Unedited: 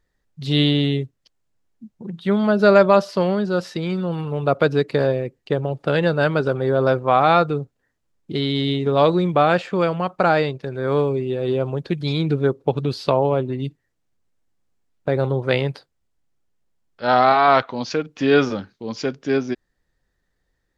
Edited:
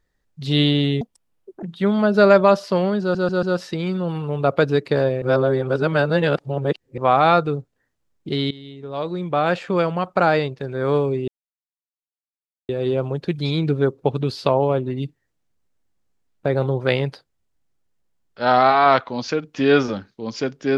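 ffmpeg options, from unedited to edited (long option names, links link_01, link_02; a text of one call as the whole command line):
ffmpeg -i in.wav -filter_complex "[0:a]asplit=10[link_01][link_02][link_03][link_04][link_05][link_06][link_07][link_08][link_09][link_10];[link_01]atrim=end=1.014[link_11];[link_02]atrim=start=1.01:end=2.08,asetpts=PTS-STARTPTS,asetrate=76293,aresample=44100[link_12];[link_03]atrim=start=2.076:end=3.602[link_13];[link_04]atrim=start=3.458:end=3.602[link_14];[link_05]atrim=start=3.458:end=3.602[link_15];[link_06]atrim=start=3.458:end=5.252[link_16];[link_07]atrim=start=5.248:end=7.012,asetpts=PTS-STARTPTS,areverse[link_17];[link_08]atrim=start=7.008:end=8.54,asetpts=PTS-STARTPTS,afade=type=out:start_time=1.528:duration=0.004:curve=hsin:silence=0.11885[link_18];[link_09]atrim=start=8.54:end=11.31,asetpts=PTS-STARTPTS,afade=type=in:duration=1.15:curve=qua:silence=0.11885,afade=type=out:start_time=2.766:duration=0.004:curve=hsin,apad=pad_dur=1.41[link_19];[link_10]atrim=start=11.31,asetpts=PTS-STARTPTS,afade=type=in:duration=0.004:curve=hsin[link_20];[link_11][link_12]acrossfade=duration=0.004:curve1=hsin:curve2=hsin[link_21];[link_21][link_13]acrossfade=duration=0.004:curve1=hsin:curve2=hsin[link_22];[link_22][link_14]acrossfade=duration=0.004:curve1=hsin:curve2=hsin[link_23];[link_23][link_15]acrossfade=duration=0.004:curve1=hsin:curve2=hsin[link_24];[link_24][link_16]acrossfade=duration=0.004:curve1=hsin:curve2=hsin[link_25];[link_25][link_17]acrossfade=duration=0.004:curve1=hsin:curve2=hsin[link_26];[link_18][link_19][link_20]concat=n=3:v=0:a=1[link_27];[link_26][link_27]acrossfade=duration=0.004:curve1=hsin:curve2=hsin" out.wav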